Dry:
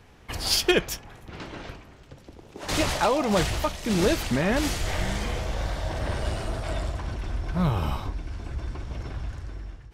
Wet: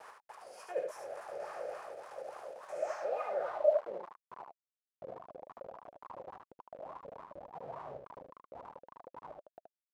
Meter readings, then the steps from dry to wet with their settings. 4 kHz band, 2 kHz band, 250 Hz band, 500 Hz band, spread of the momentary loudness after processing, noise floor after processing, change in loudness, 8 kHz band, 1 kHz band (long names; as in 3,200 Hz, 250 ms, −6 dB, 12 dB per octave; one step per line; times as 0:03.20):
below −30 dB, −21.0 dB, −31.5 dB, −7.0 dB, 17 LU, below −85 dBFS, −12.5 dB, below −25 dB, −12.0 dB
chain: compressor on every frequency bin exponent 0.4
high-pass filter 46 Hz 24 dB per octave
noise reduction from a noise print of the clip's start 10 dB
RIAA equalisation recording
noise gate with hold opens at −26 dBFS
low-shelf EQ 100 Hz +10 dB
reversed playback
downward compressor 6 to 1, threshold −28 dBFS, peak gain reduction 18.5 dB
reversed playback
phaser with its sweep stopped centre 970 Hz, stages 6
low-pass filter sweep 10,000 Hz → 150 Hz, 0:02.74–0:04.18
bit-depth reduction 6 bits, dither none
LFO wah 3.5 Hz 520–1,100 Hz, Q 8.3
on a send: single-tap delay 75 ms −4.5 dB
on the sum: level +7 dB